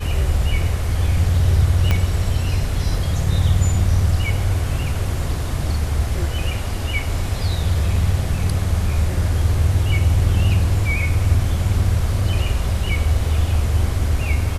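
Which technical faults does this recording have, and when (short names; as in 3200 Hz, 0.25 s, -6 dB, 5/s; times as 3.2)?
1.91 pop -5 dBFS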